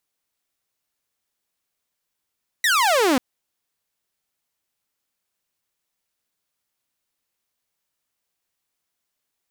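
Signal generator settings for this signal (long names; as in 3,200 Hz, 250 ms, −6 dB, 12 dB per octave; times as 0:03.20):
single falling chirp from 2,000 Hz, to 240 Hz, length 0.54 s saw, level −13 dB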